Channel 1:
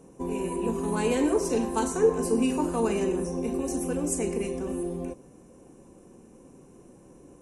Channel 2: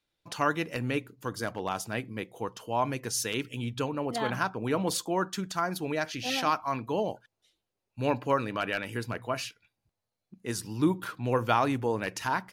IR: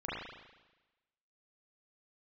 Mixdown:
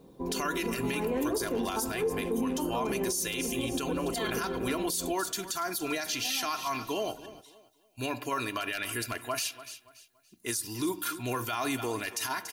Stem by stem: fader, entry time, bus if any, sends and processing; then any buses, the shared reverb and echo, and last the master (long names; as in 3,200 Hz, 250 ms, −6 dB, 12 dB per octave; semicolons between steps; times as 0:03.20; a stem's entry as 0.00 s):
−2.5 dB, 0.00 s, no send, no echo send, low-pass filter 1,600 Hz 12 dB per octave
−4.0 dB, 0.00 s, send −23 dB, echo send −17.5 dB, high-shelf EQ 2,000 Hz +12 dB; notch filter 5,100 Hz, Q 28; comb filter 2.9 ms, depth 67%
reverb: on, RT60 1.1 s, pre-delay 34 ms
echo: repeating echo 285 ms, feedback 29%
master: high-shelf EQ 7,400 Hz +11 dB; brickwall limiter −22 dBFS, peak gain reduction 19 dB